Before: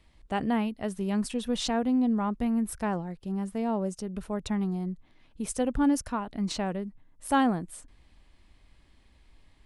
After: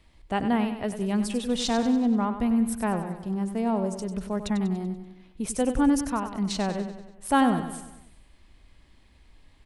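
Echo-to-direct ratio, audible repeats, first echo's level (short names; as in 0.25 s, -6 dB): -8.5 dB, 5, -10.0 dB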